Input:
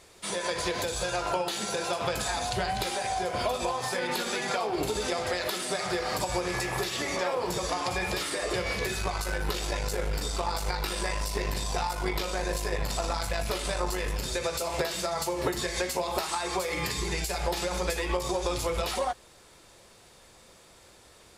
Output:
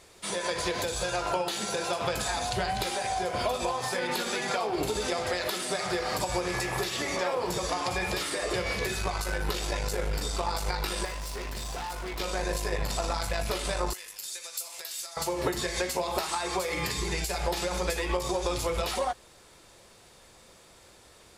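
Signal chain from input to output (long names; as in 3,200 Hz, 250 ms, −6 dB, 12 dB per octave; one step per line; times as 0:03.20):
0:11.05–0:12.20: hard clipping −33 dBFS, distortion −17 dB
0:13.93–0:15.17: first difference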